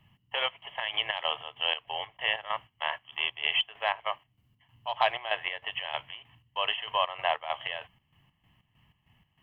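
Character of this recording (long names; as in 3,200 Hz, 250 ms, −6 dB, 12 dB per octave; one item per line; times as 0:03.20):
chopped level 3.2 Hz, depth 65%, duty 55%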